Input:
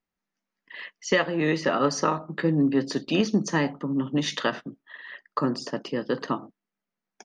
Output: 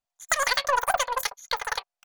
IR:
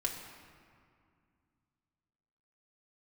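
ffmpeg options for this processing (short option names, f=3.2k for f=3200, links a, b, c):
-af "aeval=exprs='0.316*(cos(1*acos(clip(val(0)/0.316,-1,1)))-cos(1*PI/2))+0.00891*(cos(6*acos(clip(val(0)/0.316,-1,1)))-cos(6*PI/2))+0.0158*(cos(7*acos(clip(val(0)/0.316,-1,1)))-cos(7*PI/2))':c=same,asetrate=156555,aresample=44100"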